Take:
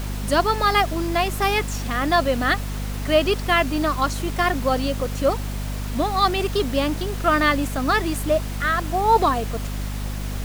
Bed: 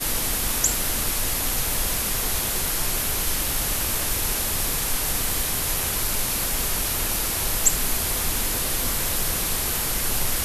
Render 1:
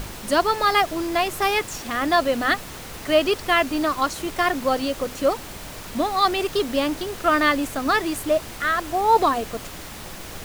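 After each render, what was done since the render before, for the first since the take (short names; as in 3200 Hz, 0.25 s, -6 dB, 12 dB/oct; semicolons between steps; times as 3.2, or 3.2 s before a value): notches 50/100/150/200/250 Hz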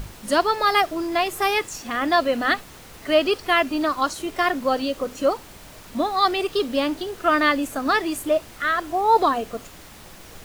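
noise print and reduce 7 dB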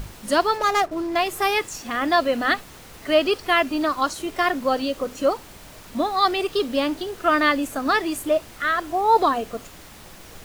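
0.57–1.16 median filter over 15 samples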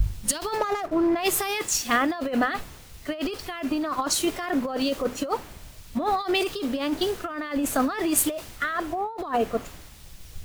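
negative-ratio compressor -26 dBFS, ratio -1; three-band expander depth 100%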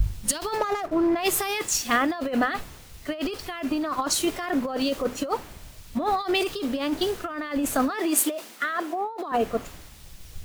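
7.9–9.32 steep high-pass 200 Hz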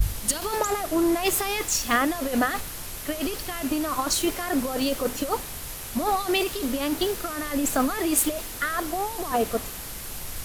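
add bed -12 dB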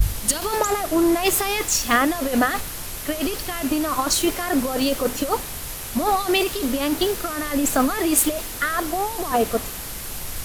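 gain +4 dB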